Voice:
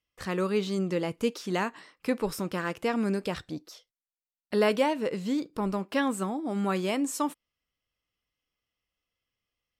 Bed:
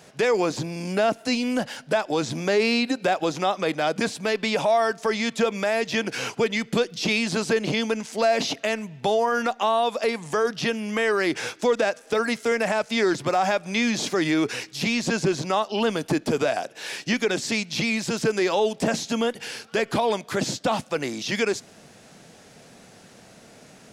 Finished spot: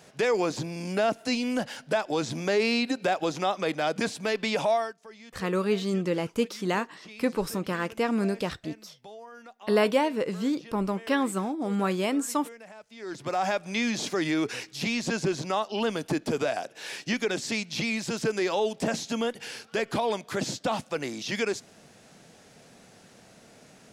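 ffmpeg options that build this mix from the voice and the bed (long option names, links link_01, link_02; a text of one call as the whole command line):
ffmpeg -i stem1.wav -i stem2.wav -filter_complex "[0:a]adelay=5150,volume=1.5dB[link_01];[1:a]volume=15.5dB,afade=type=out:start_time=4.72:duration=0.22:silence=0.1,afade=type=in:start_time=12.99:duration=0.45:silence=0.112202[link_02];[link_01][link_02]amix=inputs=2:normalize=0" out.wav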